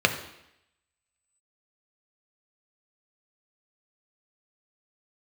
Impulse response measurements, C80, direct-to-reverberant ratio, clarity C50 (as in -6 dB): 12.5 dB, 5.0 dB, 10.5 dB